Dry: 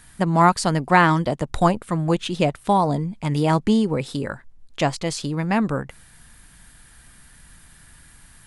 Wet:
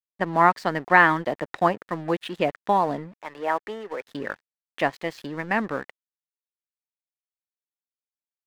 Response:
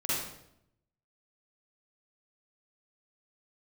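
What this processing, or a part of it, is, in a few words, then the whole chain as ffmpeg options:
pocket radio on a weak battery: -filter_complex "[0:a]asettb=1/sr,asplit=3[link_01][link_02][link_03];[link_01]atrim=end=3.144[link_04];[link_02]atrim=start=3.14:end=4.07,asetpts=PTS-STARTPTS,afade=type=in:duration=0.004:curve=qsin,afade=type=out:start_time=0.926:duration=0.004:curve=qsin,acrossover=split=410 2600:gain=0.0631 1 0.158[link_05][link_06][link_07];[link_05][link_06][link_07]amix=inputs=3:normalize=0[link_08];[link_03]atrim=start=4.066[link_09];[link_04][link_08]acrossfade=duration=0.004:curve1=hsin:curve2=qsin[link_10];[link_10][link_09]acrossfade=duration=0.004:curve1=qsin:curve2=hsin,highpass=280,lowpass=3100,aeval=exprs='sgn(val(0))*max(abs(val(0))-0.0075,0)':channel_layout=same,equalizer=frequency=1800:width_type=o:width=0.29:gain=8,volume=-1.5dB"

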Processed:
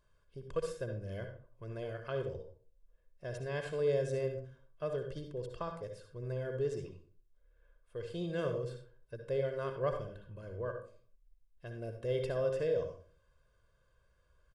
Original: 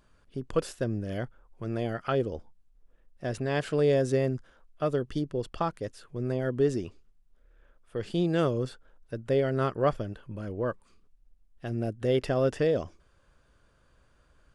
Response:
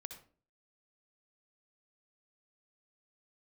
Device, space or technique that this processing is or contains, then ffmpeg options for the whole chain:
microphone above a desk: -filter_complex "[0:a]aecho=1:1:1.9:0.68[link_01];[1:a]atrim=start_sample=2205[link_02];[link_01][link_02]afir=irnorm=-1:irlink=0,volume=-6.5dB"

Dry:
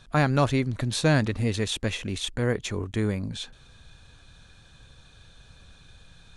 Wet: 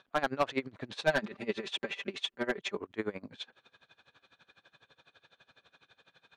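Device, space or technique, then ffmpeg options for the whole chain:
helicopter radio: -filter_complex "[0:a]highpass=370,lowpass=3000,aeval=exprs='val(0)*pow(10,-22*(0.5-0.5*cos(2*PI*12*n/s))/20)':channel_layout=same,asoftclip=type=hard:threshold=-21dB,asettb=1/sr,asplit=3[link_01][link_02][link_03];[link_01]atrim=end=1.014[link_04];[link_02]atrim=start=1.01:end=2.77,asetpts=PTS-STARTPTS,afade=type=in:duration=0.004:curve=qsin,afade=type=out:start_time=1.756:duration=0.004:curve=qsin,aecho=1:1:5.1:0.88,atrim=end_sample=77616[link_05];[link_03]atrim=start=2.766[link_06];[link_04][link_05]acrossfade=duration=0.004:curve1=hsin:curve2=qsin[link_07];[link_07][link_06]acrossfade=duration=0.004:curve1=qsin:curve2=hsin,volume=1.5dB"

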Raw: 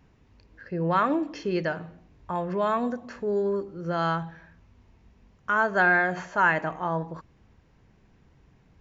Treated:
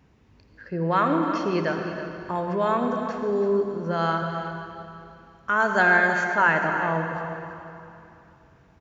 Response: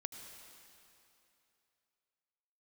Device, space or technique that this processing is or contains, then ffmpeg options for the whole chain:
cave: -filter_complex "[0:a]highpass=55,aecho=1:1:326:0.266[link_01];[1:a]atrim=start_sample=2205[link_02];[link_01][link_02]afir=irnorm=-1:irlink=0,asettb=1/sr,asplit=3[link_03][link_04][link_05];[link_03]atrim=end=5.604[link_06];[link_04]atrim=start=5.6:end=6.24,asetpts=PTS-STARTPTS,afade=type=in:duration=0.004:curve=qsin,afade=type=out:start_time=0.636:duration=0.004:curve=qsin,aemphasis=mode=production:type=50fm[link_07];[link_05]atrim=start=6.236[link_08];[link_06][link_07]acrossfade=duration=0.004:curve1=hsin:curve2=qsin[link_09];[link_09][link_08]acrossfade=duration=0.004:curve1=qsin:curve2=hsin,volume=5dB"

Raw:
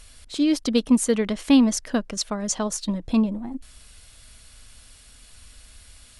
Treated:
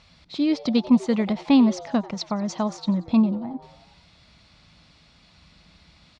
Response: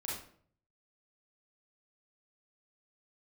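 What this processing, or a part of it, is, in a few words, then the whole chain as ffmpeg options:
frequency-shifting delay pedal into a guitar cabinet: -filter_complex "[0:a]asplit=6[link_01][link_02][link_03][link_04][link_05][link_06];[link_02]adelay=91,afreqshift=140,volume=-20dB[link_07];[link_03]adelay=182,afreqshift=280,volume=-24.6dB[link_08];[link_04]adelay=273,afreqshift=420,volume=-29.2dB[link_09];[link_05]adelay=364,afreqshift=560,volume=-33.7dB[link_10];[link_06]adelay=455,afreqshift=700,volume=-38.3dB[link_11];[link_01][link_07][link_08][link_09][link_10][link_11]amix=inputs=6:normalize=0,highpass=92,equalizer=frequency=170:width_type=q:width=4:gain=7,equalizer=frequency=290:width_type=q:width=4:gain=-3,equalizer=frequency=450:width_type=q:width=4:gain=-7,equalizer=frequency=850:width_type=q:width=4:gain=3,equalizer=frequency=1600:width_type=q:width=4:gain=-8,equalizer=frequency=3000:width_type=q:width=4:gain=-7,lowpass=frequency=4400:width=0.5412,lowpass=frequency=4400:width=1.3066,volume=1.5dB"

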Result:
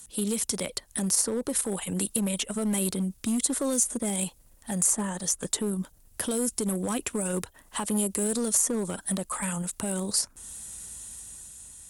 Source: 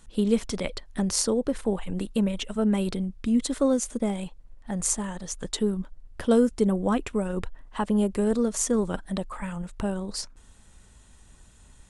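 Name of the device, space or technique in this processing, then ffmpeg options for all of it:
FM broadcast chain: -filter_complex "[0:a]highpass=47,dynaudnorm=framelen=170:gausssize=9:maxgain=5.5dB,acrossover=split=110|2000[link_01][link_02][link_03];[link_01]acompressor=threshold=-50dB:ratio=4[link_04];[link_02]acompressor=threshold=-20dB:ratio=4[link_05];[link_03]acompressor=threshold=-39dB:ratio=4[link_06];[link_04][link_05][link_06]amix=inputs=3:normalize=0,aemphasis=mode=production:type=50fm,alimiter=limit=-17dB:level=0:latency=1:release=47,asoftclip=type=hard:threshold=-20dB,lowpass=frequency=15000:width=0.5412,lowpass=frequency=15000:width=1.3066,aemphasis=mode=production:type=50fm,volume=-2.5dB"

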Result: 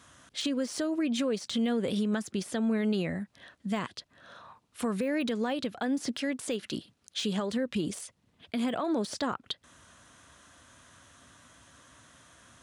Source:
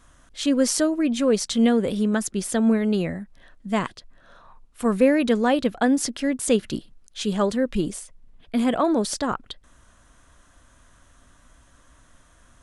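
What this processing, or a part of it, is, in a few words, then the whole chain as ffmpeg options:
broadcast voice chain: -filter_complex "[0:a]asettb=1/sr,asplit=3[link_01][link_02][link_03];[link_01]atrim=end=6.194[link_04];[link_02]atrim=start=6.19:end=6.77,asetpts=PTS-STARTPTS,afade=type=in:duration=0.004:curve=qsin,afade=type=out:start_time=0.576:duration=0.004:curve=qsin,lowshelf=frequency=200:gain=-9[link_05];[link_03]atrim=start=6.766[link_06];[link_04][link_05]acrossfade=duration=0.004:curve1=hsin:curve2=qsin[link_07];[link_07][link_06]acrossfade=duration=0.004:curve1=qsin:curve2=hsin,highpass=frequency=83:width=0.5412,highpass=frequency=83:width=1.3066,deesser=0.75,acompressor=threshold=-22dB:ratio=5,equalizer=frequency=3700:width_type=o:width=1.9:gain=5,alimiter=limit=-22dB:level=0:latency=1:release=197"

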